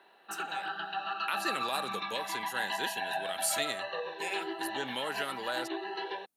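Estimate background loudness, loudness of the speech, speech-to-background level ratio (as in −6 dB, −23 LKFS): −36.5 LKFS, −37.0 LKFS, −0.5 dB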